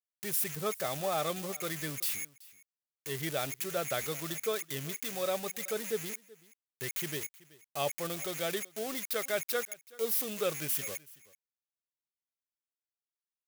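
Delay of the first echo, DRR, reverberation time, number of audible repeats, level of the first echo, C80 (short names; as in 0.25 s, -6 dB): 0.379 s, none, none, 1, -22.0 dB, none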